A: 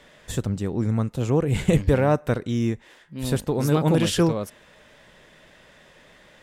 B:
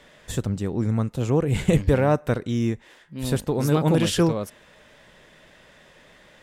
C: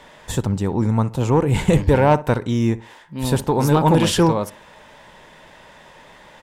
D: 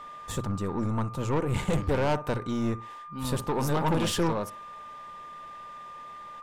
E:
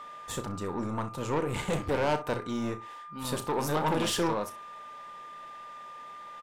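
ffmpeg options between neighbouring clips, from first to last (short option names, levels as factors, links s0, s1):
-af anull
-filter_complex "[0:a]equalizer=f=910:w=3.5:g=11.5,acontrast=89,asplit=2[s0][s1];[s1]adelay=61,lowpass=f=1800:p=1,volume=0.15,asplit=2[s2][s3];[s3]adelay=61,lowpass=f=1800:p=1,volume=0.29,asplit=2[s4][s5];[s5]adelay=61,lowpass=f=1800:p=1,volume=0.29[s6];[s0][s2][s4][s6]amix=inputs=4:normalize=0,volume=0.75"
-af "bandreject=f=60:t=h:w=6,bandreject=f=120:t=h:w=6,aeval=exprs='val(0)+0.0224*sin(2*PI*1200*n/s)':c=same,aeval=exprs='(tanh(5.62*val(0)+0.45)-tanh(0.45))/5.62':c=same,volume=0.501"
-filter_complex "[0:a]lowshelf=f=180:g=-10.5,asplit=2[s0][s1];[s1]aecho=0:1:33|64:0.282|0.141[s2];[s0][s2]amix=inputs=2:normalize=0"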